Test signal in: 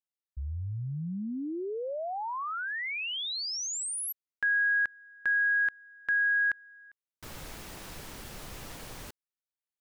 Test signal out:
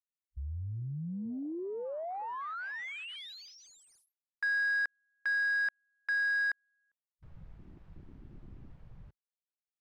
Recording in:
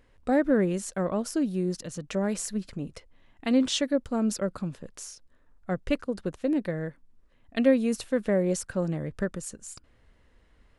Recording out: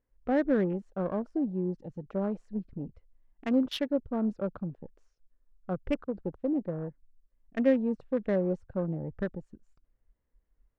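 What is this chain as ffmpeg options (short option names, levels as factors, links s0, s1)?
-af "afwtdn=0.0141,adynamicsmooth=sensitivity=2:basefreq=2000,volume=0.708"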